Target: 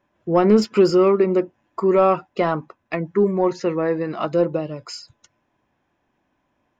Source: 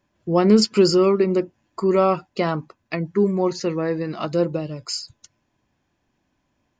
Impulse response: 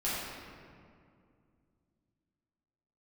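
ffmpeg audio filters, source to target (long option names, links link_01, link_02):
-filter_complex "[0:a]asplit=2[link_01][link_02];[link_02]highpass=frequency=720:poles=1,volume=11dB,asoftclip=type=tanh:threshold=-4.5dB[link_03];[link_01][link_03]amix=inputs=2:normalize=0,lowpass=frequency=1100:poles=1,volume=-6dB,bandreject=frequency=4500:width=8.5,volume=1.5dB"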